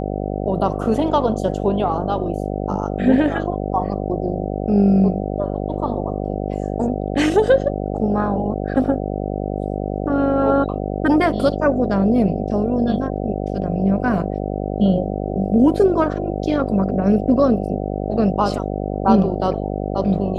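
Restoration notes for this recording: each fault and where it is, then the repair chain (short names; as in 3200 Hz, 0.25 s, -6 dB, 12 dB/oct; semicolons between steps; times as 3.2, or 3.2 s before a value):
buzz 50 Hz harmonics 15 -24 dBFS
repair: de-hum 50 Hz, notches 15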